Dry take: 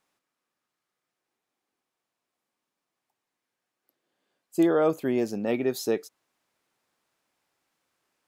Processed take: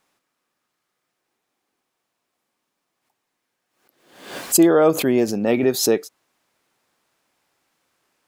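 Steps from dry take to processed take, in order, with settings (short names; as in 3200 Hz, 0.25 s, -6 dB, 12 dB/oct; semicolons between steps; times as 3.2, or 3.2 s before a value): backwards sustainer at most 86 dB/s; gain +7.5 dB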